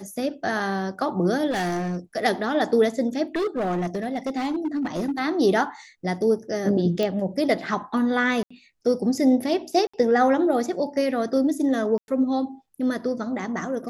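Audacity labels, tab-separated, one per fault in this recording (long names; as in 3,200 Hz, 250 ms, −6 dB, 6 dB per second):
1.500000	1.970000	clipping −22.5 dBFS
3.350000	5.200000	clipping −21.5 dBFS
7.030000	7.030000	click −14 dBFS
8.430000	8.510000	drop-out 75 ms
9.870000	9.940000	drop-out 65 ms
11.980000	12.080000	drop-out 101 ms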